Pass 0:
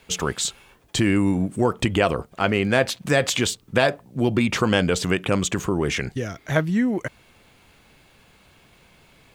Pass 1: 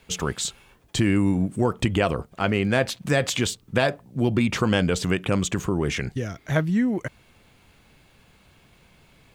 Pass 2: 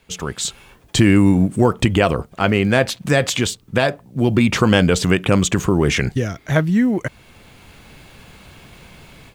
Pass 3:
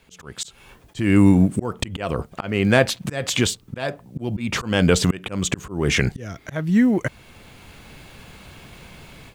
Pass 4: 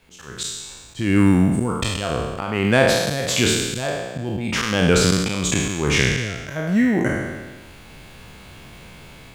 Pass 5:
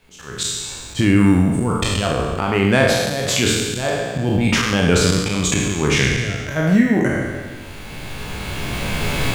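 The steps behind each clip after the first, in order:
bass and treble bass +4 dB, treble 0 dB; level −3 dB
automatic gain control gain up to 14 dB; floating-point word with a short mantissa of 6 bits; level −1 dB
volume swells 275 ms
peak hold with a decay on every bin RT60 1.35 s; level −2 dB
camcorder AGC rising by 9.7 dB per second; rectangular room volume 69 cubic metres, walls mixed, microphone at 0.32 metres

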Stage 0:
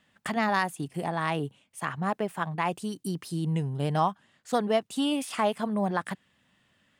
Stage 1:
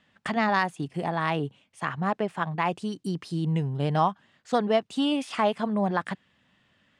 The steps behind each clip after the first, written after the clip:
low-pass filter 5,600 Hz 12 dB per octave
level +2 dB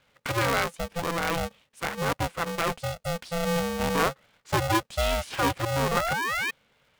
soft clipping −13.5 dBFS, distortion −21 dB
sound drawn into the spectrogram rise, 0:05.91–0:06.51, 780–2,200 Hz −28 dBFS
ring modulator with a square carrier 340 Hz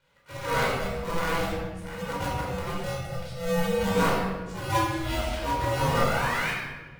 volume swells 151 ms
tuned comb filter 240 Hz, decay 0.59 s, harmonics all, mix 70%
rectangular room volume 930 cubic metres, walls mixed, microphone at 4.7 metres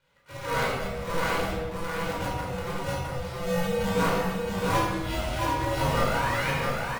single-tap delay 664 ms −3.5 dB
level −1.5 dB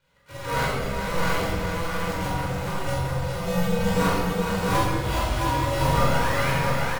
bass and treble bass +3 dB, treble +2 dB
double-tracking delay 45 ms −5 dB
echo with a time of its own for lows and highs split 510 Hz, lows 119 ms, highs 418 ms, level −6.5 dB

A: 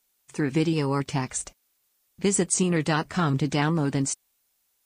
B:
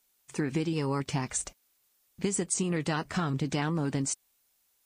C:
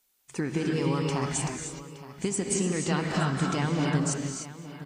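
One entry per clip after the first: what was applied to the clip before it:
downward compressor, threshold −26 dBFS, peak gain reduction 8.5 dB
multi-tap delay 223/869 ms −19/−15.5 dB; convolution reverb, pre-delay 44 ms, DRR −0.5 dB

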